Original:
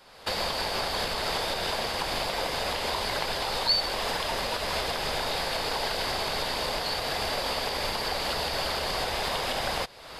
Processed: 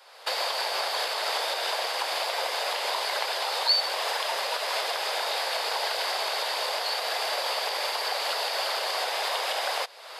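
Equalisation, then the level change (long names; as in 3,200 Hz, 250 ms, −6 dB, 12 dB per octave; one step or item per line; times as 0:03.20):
high-pass filter 500 Hz 24 dB per octave
+1.5 dB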